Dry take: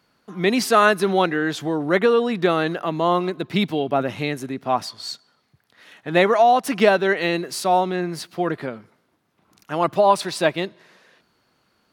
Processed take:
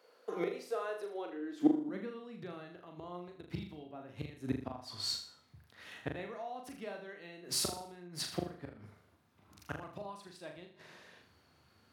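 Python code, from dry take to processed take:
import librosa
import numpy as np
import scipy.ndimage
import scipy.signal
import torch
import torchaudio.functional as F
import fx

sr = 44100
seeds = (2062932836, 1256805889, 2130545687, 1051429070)

p1 = fx.dynamic_eq(x, sr, hz=280.0, q=2.4, threshold_db=-36.0, ratio=4.0, max_db=3)
p2 = fx.gate_flip(p1, sr, shuts_db=-17.0, range_db=-25)
p3 = fx.filter_sweep_highpass(p2, sr, from_hz=480.0, to_hz=81.0, start_s=1.09, end_s=2.9, q=5.6)
p4 = p3 + fx.room_flutter(p3, sr, wall_m=6.8, rt60_s=0.47, dry=0)
y = p4 * librosa.db_to_amplitude(-5.0)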